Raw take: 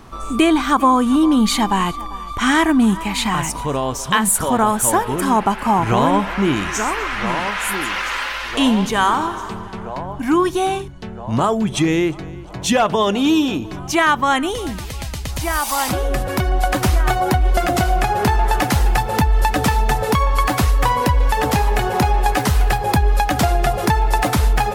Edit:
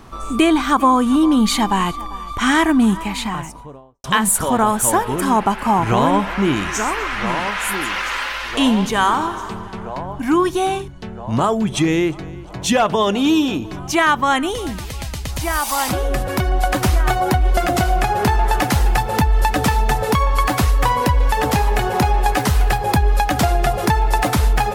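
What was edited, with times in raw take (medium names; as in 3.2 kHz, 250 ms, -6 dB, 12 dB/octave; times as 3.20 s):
2.85–4.04 s: studio fade out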